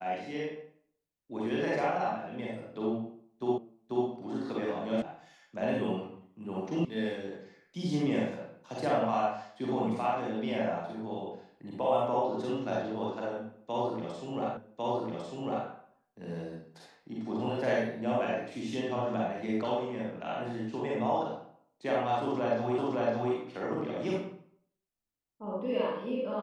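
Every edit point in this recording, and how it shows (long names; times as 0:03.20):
0:03.58: the same again, the last 0.49 s
0:05.02: cut off before it has died away
0:06.85: cut off before it has died away
0:14.57: the same again, the last 1.1 s
0:22.78: the same again, the last 0.56 s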